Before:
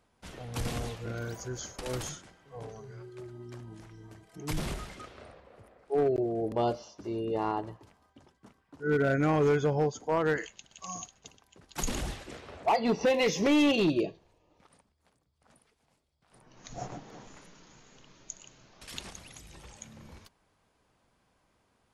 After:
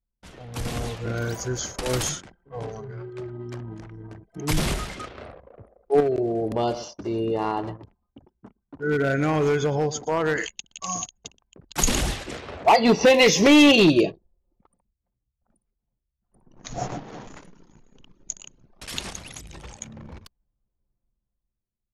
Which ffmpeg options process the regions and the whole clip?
ffmpeg -i in.wav -filter_complex "[0:a]asettb=1/sr,asplit=3[link_01][link_02][link_03];[link_01]atrim=end=6.004[link_04];[link_02]atrim=start=6:end=10.41,asetpts=PTS-STARTPTS,afade=type=in:duration=0.004:curve=qsin,afade=type=out:start_time=4.406:duration=0.004:curve=qsin,acompressor=threshold=-34dB:ratio=2:attack=3.2:release=140:knee=1:detection=peak,aecho=1:1:115:0.168,atrim=end_sample=194481[link_05];[link_03]atrim=start=10.406[link_06];[link_04][link_05]acrossfade=duration=0.004:curve1=hsin:curve2=qsin[link_07];[link_07][link_06]acrossfade=duration=0.004:curve1=qsin:curve2=hsin,anlmdn=0.00158,dynaudnorm=framelen=130:gausssize=13:maxgain=9.5dB,adynamicequalizer=threshold=0.0251:dfrequency=1800:dqfactor=0.7:tfrequency=1800:tqfactor=0.7:attack=5:release=100:ratio=0.375:range=2:mode=boostabove:tftype=highshelf" out.wav

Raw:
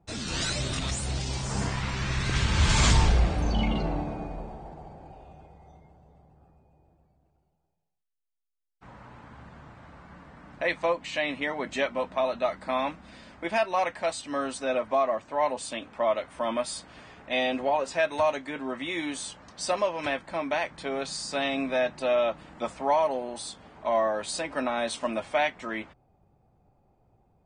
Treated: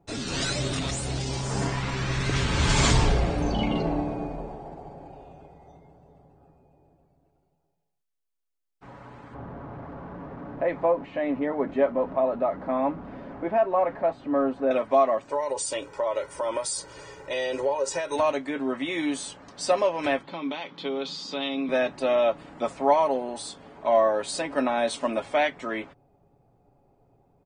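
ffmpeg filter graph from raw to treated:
ffmpeg -i in.wav -filter_complex "[0:a]asettb=1/sr,asplit=3[link_01][link_02][link_03];[link_01]atrim=end=9.344[link_04];[link_02]atrim=start=9.34:end=14.71,asetpts=PTS-STARTPTS,afade=type=in:duration=0.004:curve=qsin,afade=type=out:start_time=5.366:duration=0.004:curve=qsin,aeval=exprs='val(0)+0.5*0.0126*sgn(val(0))':channel_layout=same,lowpass=1100[link_05];[link_03]atrim=start=14.706[link_06];[link_04][link_05]acrossfade=duration=0.004:curve1=hsin:curve2=qsin[link_07];[link_07][link_06]acrossfade=duration=0.004:curve1=qsin:curve2=hsin,asettb=1/sr,asplit=3[link_08][link_09][link_10];[link_08]atrim=end=15.294[link_11];[link_09]atrim=start=15.29:end=18.16,asetpts=PTS-STARTPTS,afade=type=in:duration=0.004:curve=qsin,afade=type=out:start_time=2.866:duration=0.004:curve=qsin,highshelf=frequency=4500:width_type=q:width=1.5:gain=7.5,aecho=1:1:2.1:0.87,atrim=end_sample=126567,acompressor=threshold=-27dB:ratio=5:attack=3.2:release=140:knee=1:detection=peak[link_12];[link_10]atrim=start=18.156[link_13];[link_11][link_12]acrossfade=duration=0.004:curve1=hsin:curve2=qsin[link_14];[link_14][link_13]acrossfade=duration=0.004:curve1=qsin:curve2=hsin,asettb=1/sr,asplit=3[link_15][link_16][link_17];[link_15]atrim=end=20.234[link_18];[link_16]atrim=start=20.23:end=21.69,asetpts=PTS-STARTPTS,afade=type=in:duration=0.004:curve=qsin,afade=type=out:start_time=1.456:duration=0.004:curve=qsin,acompressor=threshold=-31dB:ratio=3:attack=3.2:release=140:knee=1:detection=peak,highpass=frequency=150:width=0.5412,highpass=frequency=150:width=1.3066,equalizer=frequency=160:width_type=q:width=4:gain=4,equalizer=frequency=650:width_type=q:width=4:gain=-9,equalizer=frequency=1700:width_type=q:width=4:gain=-8,equalizer=frequency=3400:width_type=q:width=4:gain=10,lowpass=frequency=5400:width=0.5412,lowpass=frequency=5400:width=1.3066[link_19];[link_17]atrim=start=21.686[link_20];[link_18][link_19]acrossfade=duration=0.004:curve1=hsin:curve2=qsin[link_21];[link_21][link_20]acrossfade=duration=0.004:curve1=qsin:curve2=hsin,equalizer=frequency=390:width_type=o:width=1.8:gain=5.5,bandreject=frequency=50:width_type=h:width=6,bandreject=frequency=100:width_type=h:width=6,bandreject=frequency=150:width_type=h:width=6,aecho=1:1:7.2:0.35" out.wav

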